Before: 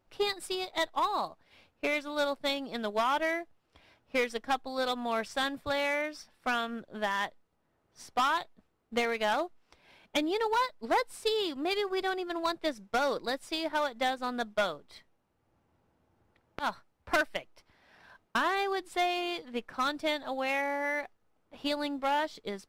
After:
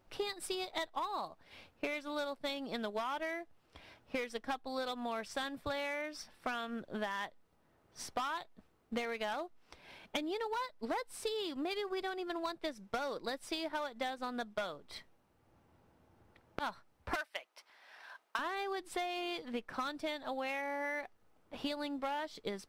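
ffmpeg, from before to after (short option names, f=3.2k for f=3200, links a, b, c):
-filter_complex "[0:a]asettb=1/sr,asplit=3[a][b][c];[a]atrim=end=17.154[d];[b]atrim=start=17.15:end=18.39,asetpts=PTS-STARTPTS,afade=t=in:d=0.004:c=qsin,afade=t=out:st=1.236:d=0.004:c=qsin,highpass=700[e];[c]atrim=start=18.386[f];[d][e]acrossfade=d=0.004:c1=hsin:c2=qsin[g];[g][f]acrossfade=d=0.004:c1=qsin:c2=hsin,acompressor=threshold=-40dB:ratio=6,bandreject=f=7k:w=30,volume=4dB"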